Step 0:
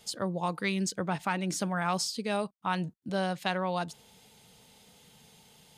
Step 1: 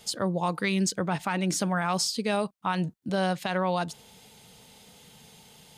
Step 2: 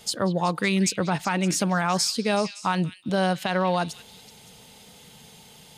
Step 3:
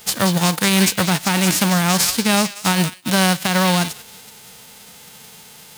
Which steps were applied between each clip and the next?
limiter -21 dBFS, peak gain reduction 7.5 dB; gain +5 dB
delay with a stepping band-pass 0.188 s, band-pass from 2900 Hz, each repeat 0.7 oct, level -9.5 dB; gain +3.5 dB
spectral whitening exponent 0.3; gain +7 dB

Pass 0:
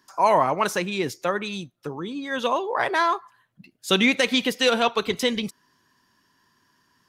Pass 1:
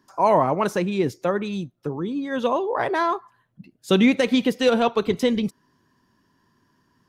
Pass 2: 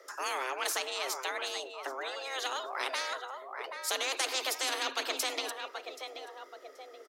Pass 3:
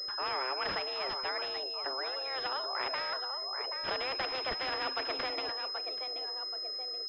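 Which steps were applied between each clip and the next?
tilt shelf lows +6.5 dB, about 850 Hz
feedback echo 0.779 s, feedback 23%, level -20.5 dB; frequency shift +260 Hz; spectral compressor 4:1; gain -8.5 dB
pulse-width modulation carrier 5100 Hz

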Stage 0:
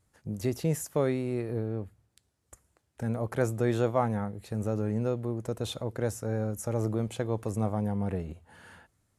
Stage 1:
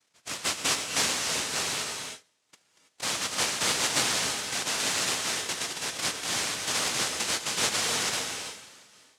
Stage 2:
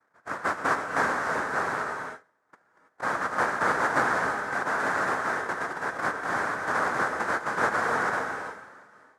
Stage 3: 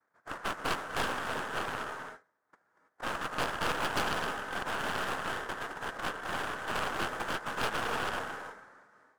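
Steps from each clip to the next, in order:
half-waves squared off; noise vocoder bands 1; non-linear reverb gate 0.35 s rising, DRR 4 dB; gain -4.5 dB
EQ curve 110 Hz 0 dB, 1600 Hz +11 dB, 2800 Hz -18 dB
tracing distortion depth 0.29 ms; gain -7.5 dB

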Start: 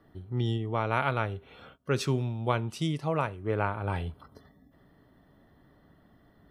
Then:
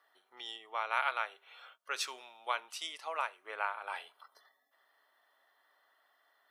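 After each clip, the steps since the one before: Bessel high-pass 1100 Hz, order 4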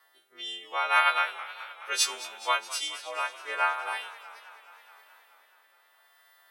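frequency quantiser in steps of 2 st; rotary speaker horn 0.75 Hz; warbling echo 0.212 s, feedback 72%, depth 120 cents, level -17 dB; gain +7.5 dB

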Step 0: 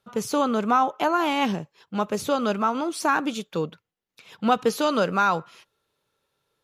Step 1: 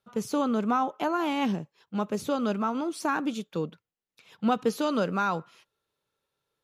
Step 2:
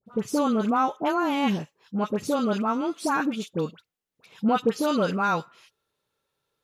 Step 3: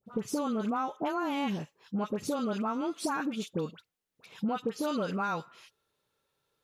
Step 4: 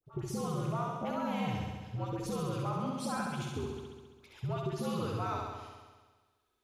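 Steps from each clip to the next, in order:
dynamic EQ 230 Hz, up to +6 dB, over -38 dBFS, Q 0.77; gain -7 dB
dispersion highs, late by 66 ms, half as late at 1300 Hz; gain +3 dB
compressor 5:1, threshold -29 dBFS, peak gain reduction 11.5 dB
flutter echo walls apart 11.5 m, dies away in 1.4 s; frequency shift -81 Hz; gain -6 dB

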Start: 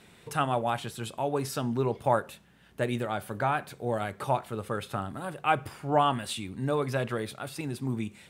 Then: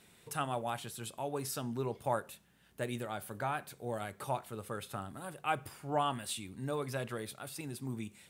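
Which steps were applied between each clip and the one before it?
high shelf 6100 Hz +11 dB; gain -8.5 dB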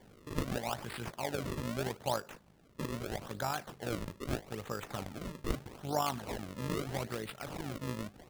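in parallel at +2 dB: compressor, threshold -44 dBFS, peak gain reduction 16 dB; on the sum: AM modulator 52 Hz, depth 40%; decimation with a swept rate 33×, swing 160% 0.79 Hz

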